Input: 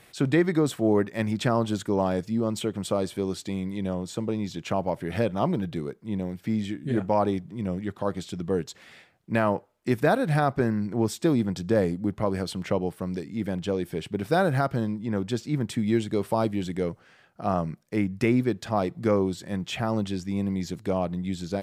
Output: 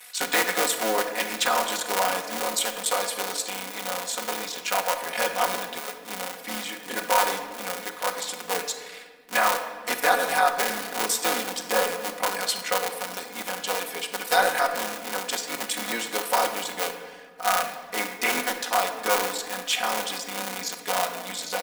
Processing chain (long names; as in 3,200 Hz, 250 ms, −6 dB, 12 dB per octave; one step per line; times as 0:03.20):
sub-harmonics by changed cycles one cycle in 3, muted
high-pass filter 820 Hz 12 dB per octave
high-shelf EQ 6,300 Hz +10.5 dB
comb filter 4.1 ms, depth 85%
in parallel at −8 dB: hard clipping −20 dBFS, distortion −8 dB
on the sum: rectangular room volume 1,700 cubic metres, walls mixed, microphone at 1 metre
level +2 dB